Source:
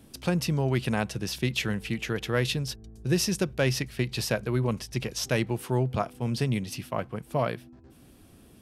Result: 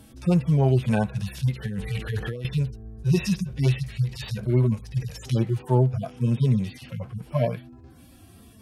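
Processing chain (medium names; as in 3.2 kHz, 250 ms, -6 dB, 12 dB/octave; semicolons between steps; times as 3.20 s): harmonic-percussive separation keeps harmonic; peaking EQ 300 Hz -5 dB 0.77 oct; 1.66–2.45 s: compressor with a negative ratio -37 dBFS, ratio -1; trim +8 dB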